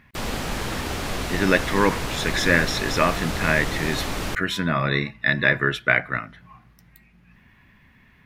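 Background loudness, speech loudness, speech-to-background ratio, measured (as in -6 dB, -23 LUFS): -28.5 LUFS, -22.5 LUFS, 6.0 dB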